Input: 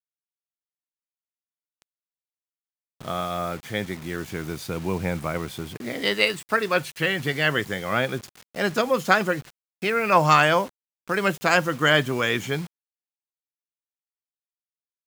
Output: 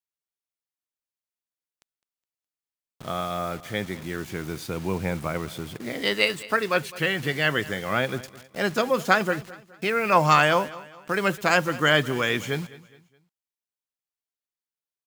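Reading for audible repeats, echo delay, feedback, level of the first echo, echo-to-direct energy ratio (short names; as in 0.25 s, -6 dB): 2, 0.208 s, 39%, -19.0 dB, -18.5 dB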